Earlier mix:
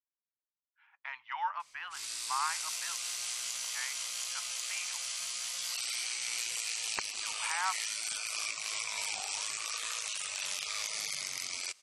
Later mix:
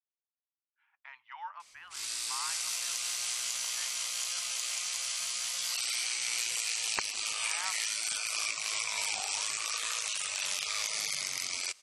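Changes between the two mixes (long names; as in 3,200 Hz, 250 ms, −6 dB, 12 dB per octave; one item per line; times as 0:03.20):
speech −8.0 dB
background +3.0 dB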